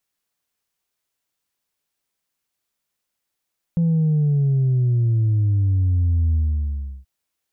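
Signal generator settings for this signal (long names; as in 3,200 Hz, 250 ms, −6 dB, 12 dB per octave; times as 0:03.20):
bass drop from 170 Hz, over 3.28 s, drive 1 dB, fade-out 0.71 s, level −15.5 dB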